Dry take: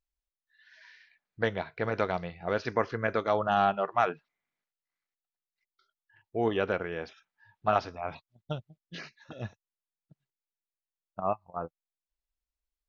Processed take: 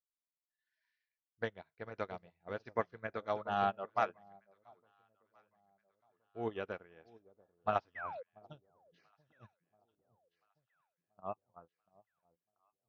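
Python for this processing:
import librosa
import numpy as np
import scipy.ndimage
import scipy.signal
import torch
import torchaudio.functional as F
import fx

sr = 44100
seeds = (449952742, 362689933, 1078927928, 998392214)

y = fx.spec_paint(x, sr, seeds[0], shape='fall', start_s=7.95, length_s=0.28, low_hz=460.0, high_hz=2100.0, level_db=-29.0)
y = fx.echo_alternate(y, sr, ms=686, hz=880.0, feedback_pct=64, wet_db=-9)
y = fx.upward_expand(y, sr, threshold_db=-39.0, expansion=2.5)
y = y * librosa.db_to_amplitude(-5.0)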